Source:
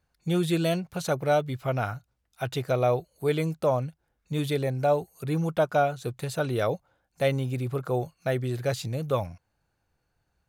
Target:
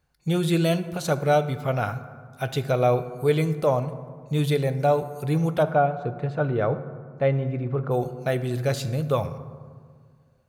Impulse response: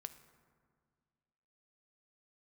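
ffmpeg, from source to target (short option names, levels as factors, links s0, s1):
-filter_complex "[0:a]asplit=3[s0][s1][s2];[s0]afade=t=out:st=5.62:d=0.02[s3];[s1]lowpass=1700,afade=t=in:st=5.62:d=0.02,afade=t=out:st=7.9:d=0.02[s4];[s2]afade=t=in:st=7.9:d=0.02[s5];[s3][s4][s5]amix=inputs=3:normalize=0[s6];[1:a]atrim=start_sample=2205[s7];[s6][s7]afir=irnorm=-1:irlink=0,volume=2.37"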